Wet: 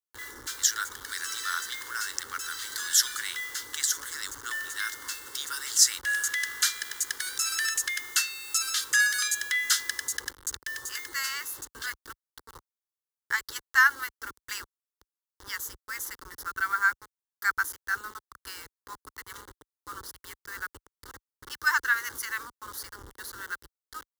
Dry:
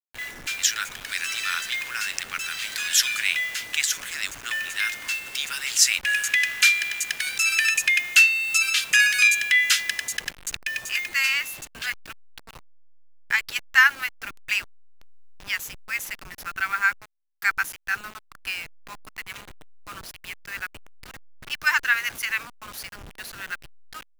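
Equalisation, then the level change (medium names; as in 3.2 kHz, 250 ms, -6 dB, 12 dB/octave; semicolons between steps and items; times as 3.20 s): high-pass 48 Hz; static phaser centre 670 Hz, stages 6; 0.0 dB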